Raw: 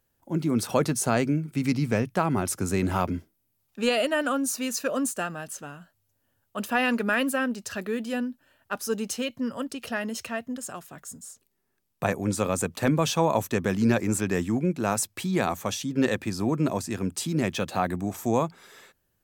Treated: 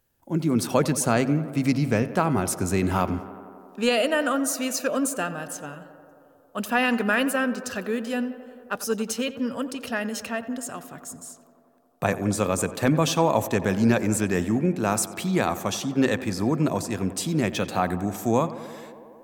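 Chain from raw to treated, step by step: tape echo 90 ms, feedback 88%, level -14 dB, low-pass 2500 Hz; gain +2 dB

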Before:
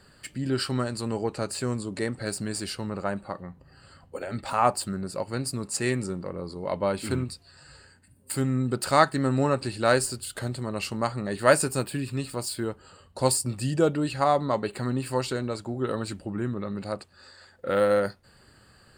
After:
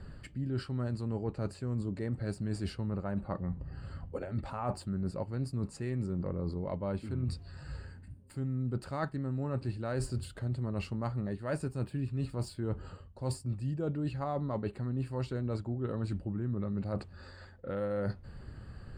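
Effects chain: RIAA curve playback; reverse; compressor 12:1, threshold -31 dBFS, peak gain reduction 20.5 dB; reverse

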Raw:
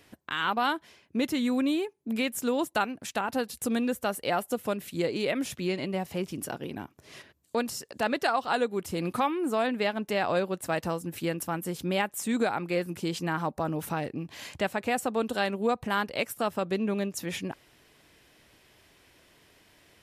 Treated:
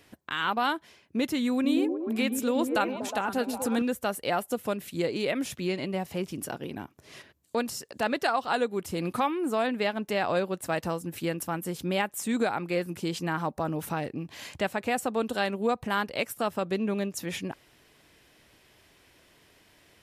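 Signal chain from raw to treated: 1.52–3.82 delay with a stepping band-pass 0.121 s, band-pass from 270 Hz, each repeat 0.7 oct, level -1 dB

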